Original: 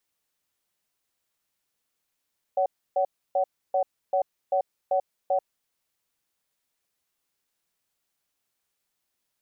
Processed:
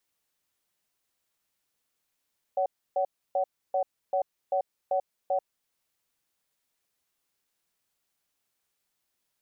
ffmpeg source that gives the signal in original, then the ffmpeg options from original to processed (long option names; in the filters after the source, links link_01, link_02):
-f lavfi -i "aevalsrc='0.0708*(sin(2*PI*562*t)+sin(2*PI*751*t))*clip(min(mod(t,0.39),0.09-mod(t,0.39))/0.005,0,1)':duration=2.93:sample_rate=44100"
-af "alimiter=limit=-20dB:level=0:latency=1:release=361"